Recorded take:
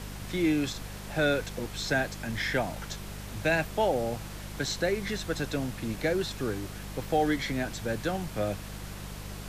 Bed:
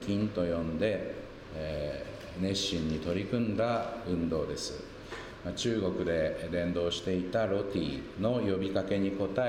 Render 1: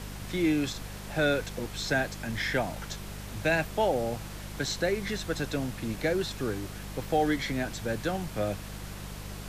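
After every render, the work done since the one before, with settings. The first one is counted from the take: nothing audible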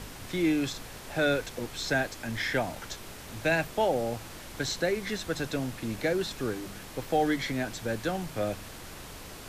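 de-hum 50 Hz, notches 4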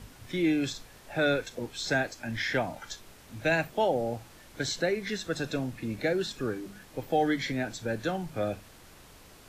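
noise print and reduce 9 dB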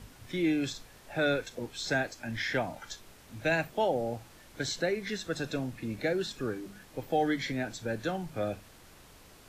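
gain -2 dB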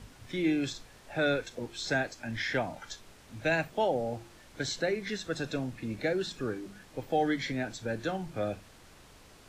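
bell 13000 Hz -7.5 dB 0.53 oct; de-hum 173.5 Hz, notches 2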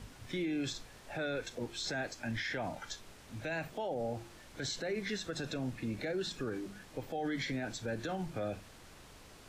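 limiter -28.5 dBFS, peak gain reduction 11.5 dB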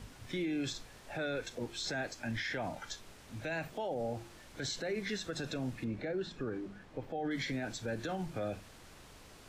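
5.84–7.31 LPF 1700 Hz 6 dB/oct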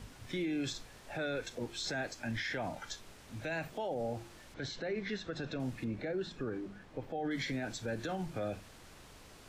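4.54–5.6 air absorption 140 m

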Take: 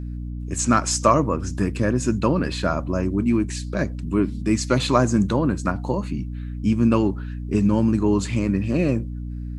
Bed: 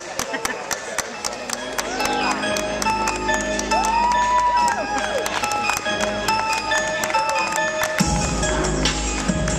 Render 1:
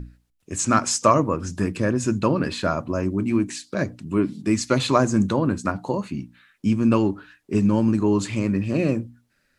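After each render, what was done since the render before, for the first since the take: notches 60/120/180/240/300 Hz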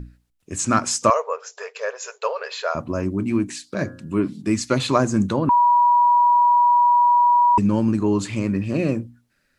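1.1–2.75 brick-wall FIR band-pass 410–7600 Hz; 3.71–4.28 de-hum 88.28 Hz, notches 19; 5.49–7.58 bleep 967 Hz -12 dBFS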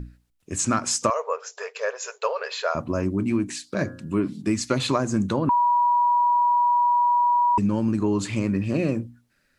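compressor, threshold -18 dBFS, peak gain reduction 7.5 dB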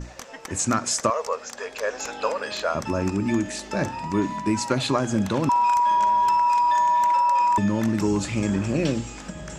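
add bed -15 dB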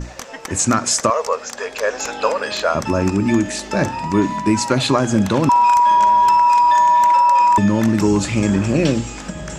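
gain +7 dB; limiter -3 dBFS, peak gain reduction 2.5 dB

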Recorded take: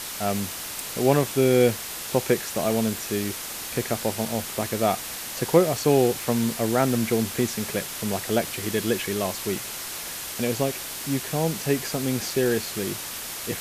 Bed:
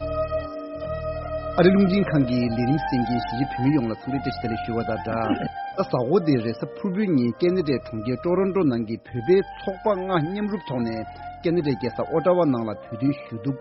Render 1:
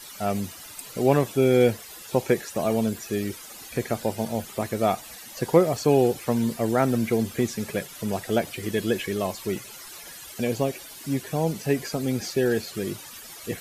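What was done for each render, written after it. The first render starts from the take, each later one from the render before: denoiser 14 dB, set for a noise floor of -35 dBFS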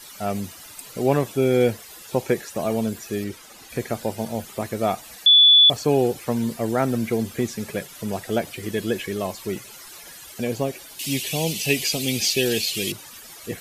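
3.24–3.7 high shelf 6900 Hz -7.5 dB; 5.26–5.7 bleep 3450 Hz -9 dBFS; 10.99–12.92 resonant high shelf 2000 Hz +11 dB, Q 3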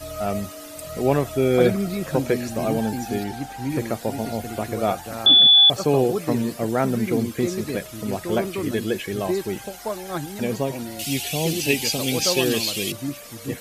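add bed -7 dB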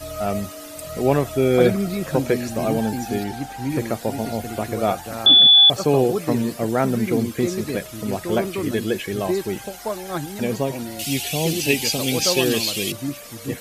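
gain +1.5 dB

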